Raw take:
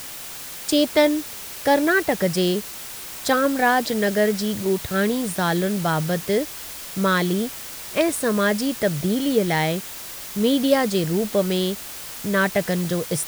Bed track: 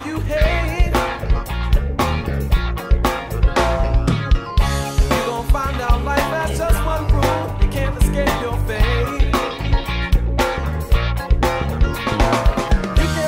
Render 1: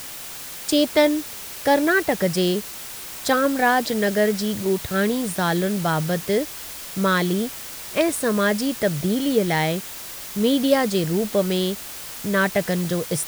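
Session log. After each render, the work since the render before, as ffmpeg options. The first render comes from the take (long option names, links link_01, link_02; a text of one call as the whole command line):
ffmpeg -i in.wav -af anull out.wav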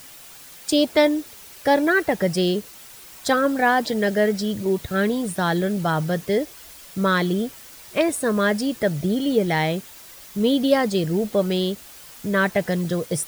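ffmpeg -i in.wav -af "afftdn=noise_reduction=9:noise_floor=-35" out.wav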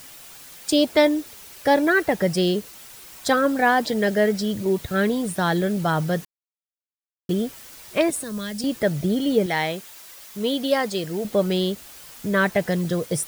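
ffmpeg -i in.wav -filter_complex "[0:a]asettb=1/sr,asplit=3[link_01][link_02][link_03];[link_01]atrim=end=8.104[link_04];[link_02]atrim=start=8.1:end=8.64,asetpts=PTS-STARTPTS,afade=type=in:duration=0.004:curve=qsin,afade=type=out:start_time=0.536:duration=0.004:curve=qsin,acrossover=split=170|3000[link_05][link_06][link_07];[link_06]acompressor=threshold=-34dB:ratio=6:attack=3.2:release=140:knee=2.83:detection=peak[link_08];[link_05][link_08][link_07]amix=inputs=3:normalize=0[link_09];[link_03]atrim=start=8.636[link_10];[link_04][link_09]acrossfade=duration=0.004:curve1=hsin:curve2=qsin[link_11];[link_11][link_10]acrossfade=duration=0.004:curve1=qsin:curve2=hsin,asettb=1/sr,asplit=3[link_12][link_13][link_14];[link_12]atrim=end=9.464[link_15];[link_13]atrim=start=9.46:end=11.25,asetpts=PTS-STARTPTS,afade=type=in:duration=0.004:curve=qsin,afade=type=out:start_time=1.786:duration=0.004:curve=qsin,lowshelf=frequency=320:gain=-10.5[link_16];[link_14]atrim=start=11.246[link_17];[link_15][link_16]acrossfade=duration=0.004:curve1=hsin:curve2=qsin[link_18];[link_18][link_17]acrossfade=duration=0.004:curve1=qsin:curve2=hsin,asplit=3[link_19][link_20][link_21];[link_19]atrim=end=6.25,asetpts=PTS-STARTPTS,afade=type=out:start_time=6.246:duration=0.004:curve=hsin[link_22];[link_20]atrim=start=6.25:end=7.29,asetpts=PTS-STARTPTS,volume=0[link_23];[link_21]atrim=start=7.29,asetpts=PTS-STARTPTS,afade=type=in:duration=0.004:curve=hsin[link_24];[link_22][link_23][link_24]concat=n=3:v=0:a=1" out.wav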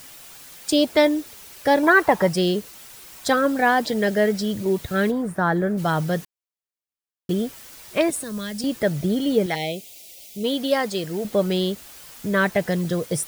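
ffmpeg -i in.wav -filter_complex "[0:a]asettb=1/sr,asplit=3[link_01][link_02][link_03];[link_01]atrim=end=1.834[link_04];[link_02]atrim=start=1.83:end=2.29,asetpts=PTS-STARTPTS,afade=type=in:duration=0.004:curve=qsin,afade=type=out:start_time=0.456:duration=0.004:curve=qsin,equalizer=frequency=1000:width=1.9:gain=15[link_05];[link_03]atrim=start=2.286[link_06];[link_04][link_05]acrossfade=duration=0.004:curve1=hsin:curve2=qsin[link_07];[link_07][link_06]acrossfade=duration=0.004:curve1=qsin:curve2=hsin,asplit=3[link_08][link_09][link_10];[link_08]afade=type=out:start_time=5.1:duration=0.02[link_11];[link_09]highshelf=frequency=2200:width_type=q:width=1.5:gain=-11.5,afade=type=in:start_time=5.1:duration=0.02,afade=type=out:start_time=5.77:duration=0.02[link_12];[link_10]afade=type=in:start_time=5.77:duration=0.02[link_13];[link_11][link_12][link_13]amix=inputs=3:normalize=0,asplit=3[link_14][link_15][link_16];[link_14]afade=type=out:start_time=9.54:duration=0.02[link_17];[link_15]asuperstop=centerf=1300:order=8:qfactor=0.89,afade=type=in:start_time=9.54:duration=0.02,afade=type=out:start_time=10.43:duration=0.02[link_18];[link_16]afade=type=in:start_time=10.43:duration=0.02[link_19];[link_17][link_18][link_19]amix=inputs=3:normalize=0" out.wav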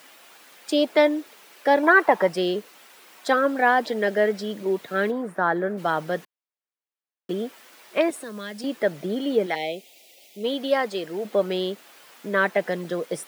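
ffmpeg -i in.wav -af "highpass=frequency=180:width=0.5412,highpass=frequency=180:width=1.3066,bass=frequency=250:gain=-10,treble=frequency=4000:gain=-11" out.wav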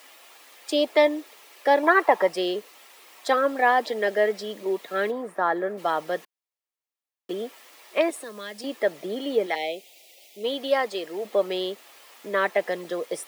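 ffmpeg -i in.wav -af "highpass=340,bandreject=frequency=1500:width=8.4" out.wav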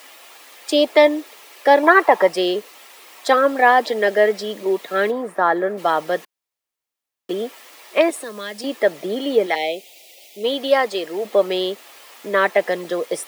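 ffmpeg -i in.wav -af "volume=6.5dB,alimiter=limit=-1dB:level=0:latency=1" out.wav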